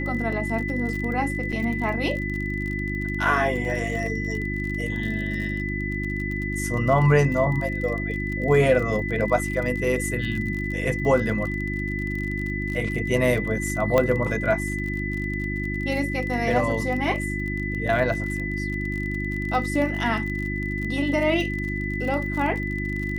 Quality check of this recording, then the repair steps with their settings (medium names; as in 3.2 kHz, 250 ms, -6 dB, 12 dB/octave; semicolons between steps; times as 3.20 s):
crackle 38 per s -30 dBFS
hum 50 Hz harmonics 7 -29 dBFS
whine 2 kHz -30 dBFS
1.52–1.53 s: dropout 5.5 ms
13.98 s: pop -8 dBFS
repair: de-click; band-stop 2 kHz, Q 30; de-hum 50 Hz, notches 7; interpolate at 1.52 s, 5.5 ms